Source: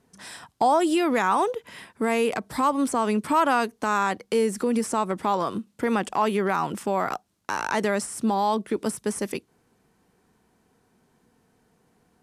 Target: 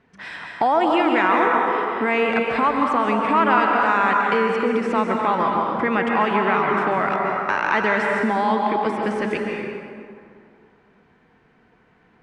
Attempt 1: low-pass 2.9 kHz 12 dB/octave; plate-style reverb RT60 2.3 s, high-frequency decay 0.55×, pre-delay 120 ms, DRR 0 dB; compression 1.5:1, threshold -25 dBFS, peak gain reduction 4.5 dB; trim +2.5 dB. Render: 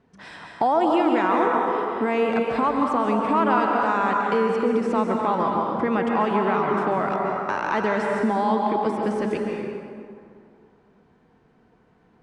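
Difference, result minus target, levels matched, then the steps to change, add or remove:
2 kHz band -5.0 dB
add after compression: peaking EQ 2.1 kHz +9.5 dB 1.5 oct

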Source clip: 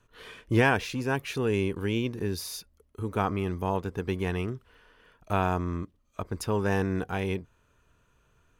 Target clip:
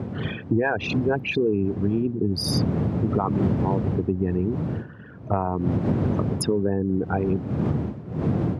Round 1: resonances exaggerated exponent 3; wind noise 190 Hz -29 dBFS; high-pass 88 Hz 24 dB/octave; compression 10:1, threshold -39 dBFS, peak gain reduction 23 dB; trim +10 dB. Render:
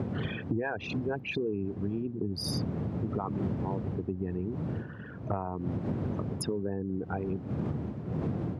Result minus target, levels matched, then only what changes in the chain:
compression: peak gain reduction +10 dB
change: compression 10:1, threshold -28 dBFS, peak gain reduction 13.5 dB

